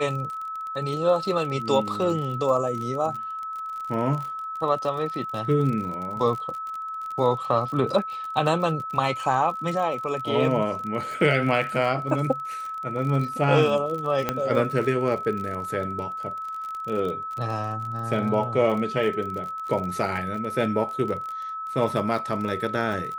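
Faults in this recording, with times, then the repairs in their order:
crackle 38/s -31 dBFS
tone 1300 Hz -30 dBFS
14.29 pop -9 dBFS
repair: de-click; notch 1300 Hz, Q 30

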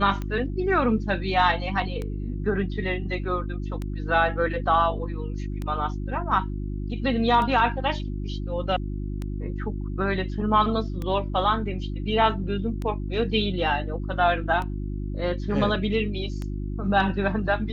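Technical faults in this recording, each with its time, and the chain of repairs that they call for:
hum 50 Hz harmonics 7 -30 dBFS
tick 33 1/3 rpm -19 dBFS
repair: de-click; de-hum 50 Hz, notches 7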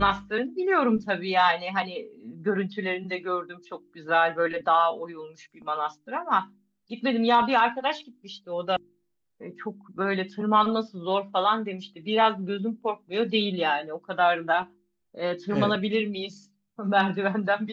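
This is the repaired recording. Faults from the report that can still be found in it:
none

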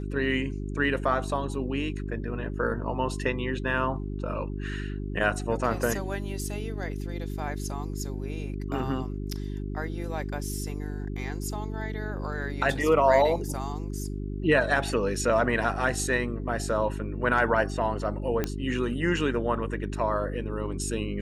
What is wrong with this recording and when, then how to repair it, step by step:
hum 50 Hz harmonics 8 -33 dBFS
18.44 pop -13 dBFS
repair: de-click; de-hum 50 Hz, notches 8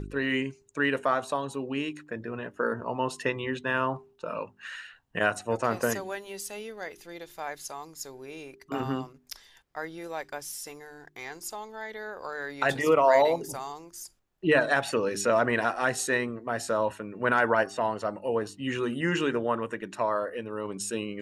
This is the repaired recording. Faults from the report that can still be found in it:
none

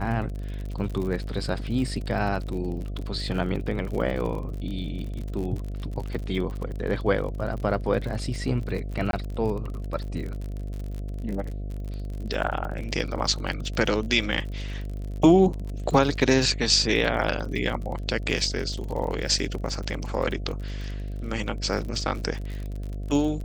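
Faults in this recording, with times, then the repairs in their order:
buzz 50 Hz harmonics 14 -32 dBFS
crackle 46/s -32 dBFS
9.11–9.13 gap 22 ms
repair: de-click; de-hum 50 Hz, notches 14; interpolate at 9.11, 22 ms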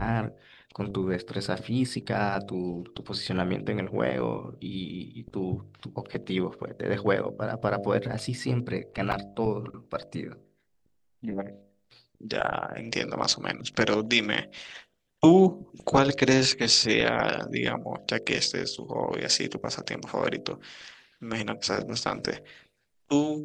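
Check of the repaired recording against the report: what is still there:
none

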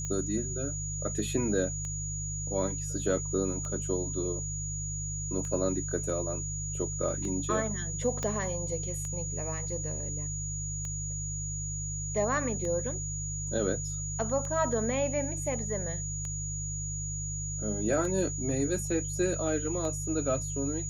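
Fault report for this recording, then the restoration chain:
hum 50 Hz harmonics 3 -37 dBFS
tick 33 1/3 rpm -24 dBFS
tone 6800 Hz -36 dBFS
8.23 pop -18 dBFS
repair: de-click; de-hum 50 Hz, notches 3; notch 6800 Hz, Q 30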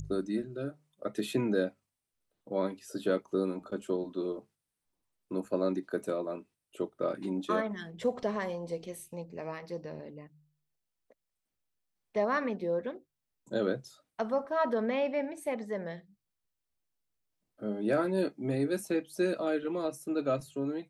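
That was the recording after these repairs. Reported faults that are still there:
8.23 pop

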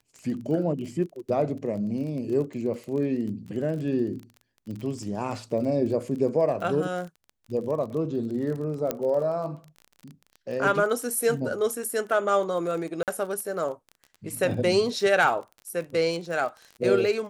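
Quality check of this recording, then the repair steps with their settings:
crackle 28/s -34 dBFS
8.91 pop -11 dBFS
13.03–13.08 gap 48 ms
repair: de-click; interpolate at 13.03, 48 ms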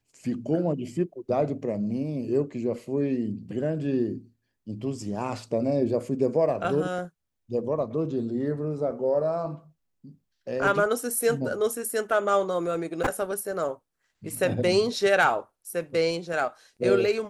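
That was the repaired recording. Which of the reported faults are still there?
none

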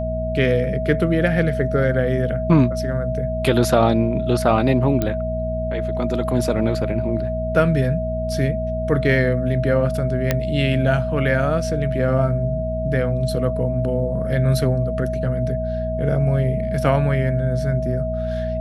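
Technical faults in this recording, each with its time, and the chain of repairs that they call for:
hum 60 Hz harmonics 4 -26 dBFS
tone 640 Hz -24 dBFS
5.02 pop -8 dBFS
10.31 pop -4 dBFS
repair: de-click; de-hum 60 Hz, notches 4; notch 640 Hz, Q 30

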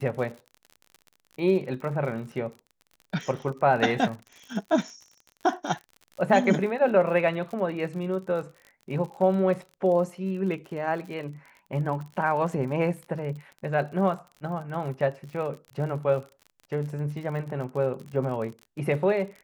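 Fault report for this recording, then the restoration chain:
crackle 47/s -36 dBFS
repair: de-click

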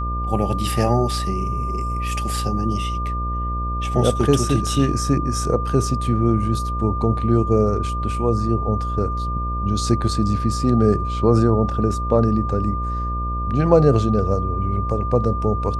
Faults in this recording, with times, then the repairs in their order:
buzz 60 Hz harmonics 11 -25 dBFS
tone 1200 Hz -26 dBFS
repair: notch 1200 Hz, Q 30; de-hum 60 Hz, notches 11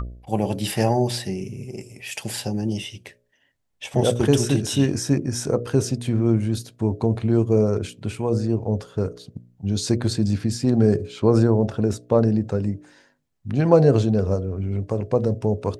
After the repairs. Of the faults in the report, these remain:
none

